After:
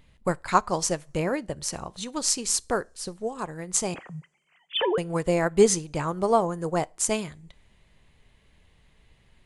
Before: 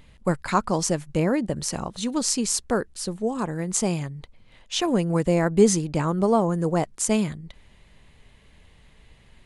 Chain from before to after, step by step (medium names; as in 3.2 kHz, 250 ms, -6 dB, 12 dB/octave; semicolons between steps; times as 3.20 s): 3.94–4.98 s: formants replaced by sine waves; dynamic bell 220 Hz, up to -8 dB, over -36 dBFS, Q 0.86; two-slope reverb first 0.34 s, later 2.4 s, from -27 dB, DRR 16.5 dB; upward expansion 1.5:1, over -37 dBFS; trim +4 dB